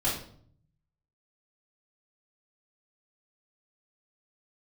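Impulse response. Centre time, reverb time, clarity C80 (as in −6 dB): 38 ms, 0.60 s, 9.5 dB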